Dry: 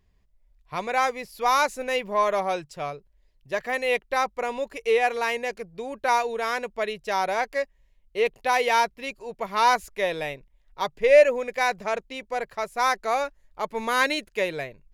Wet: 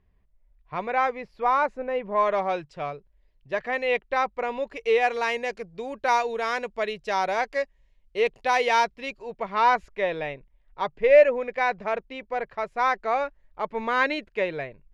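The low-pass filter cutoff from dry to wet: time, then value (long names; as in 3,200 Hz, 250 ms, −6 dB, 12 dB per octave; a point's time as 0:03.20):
0:01.11 2,300 Hz
0:01.94 1,200 Hz
0:02.28 3,300 Hz
0:04.56 3,300 Hz
0:05.15 6,100 Hz
0:08.91 6,100 Hz
0:09.62 2,700 Hz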